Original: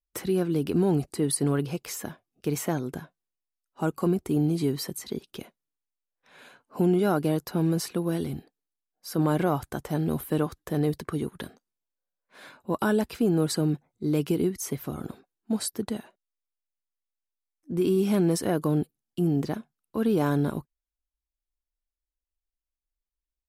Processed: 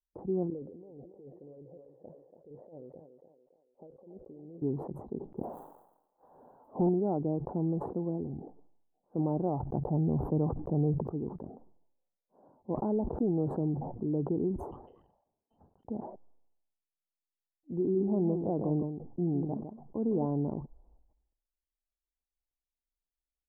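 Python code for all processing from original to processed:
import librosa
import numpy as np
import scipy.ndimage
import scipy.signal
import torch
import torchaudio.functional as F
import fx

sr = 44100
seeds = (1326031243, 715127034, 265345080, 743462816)

y = fx.chain(x, sr, fx.formant_cascade(vowel='e'),
    fx.over_compress(threshold_db=-43.0, ratio=-1.0),
    fx.echo_thinned(ms=283, feedback_pct=50, hz=360.0, wet_db=-7), at=(0.5, 4.62))
y = fx.chain(y, sr, fx.crossing_spikes(level_db=-28.5),
    fx.leveller(passes=2),
    fx.high_shelf(hz=3800.0, db=7.5), at=(5.37, 6.89))
y = fx.chain(y, sr, fx.peak_eq(hz=140.0, db=6.0, octaves=0.86),
    fx.env_flatten(amount_pct=50), at=(9.6, 11.09))
y = fx.chain(y, sr, fx.block_float(bits=5),
    fx.pre_swell(db_per_s=27.0), at=(12.7, 14.08))
y = fx.chain(y, sr, fx.highpass(hz=220.0, slope=12),
    fx.freq_invert(carrier_hz=3300), at=(14.71, 15.85))
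y = fx.chain(y, sr, fx.echo_single(ms=156, db=-9.0),
    fx.pre_swell(db_per_s=110.0), at=(17.79, 20.26))
y = scipy.signal.sosfilt(scipy.signal.ellip(4, 1.0, 60, 860.0, 'lowpass', fs=sr, output='sos'), y)
y = fx.sustainer(y, sr, db_per_s=65.0)
y = F.gain(torch.from_numpy(y), -6.0).numpy()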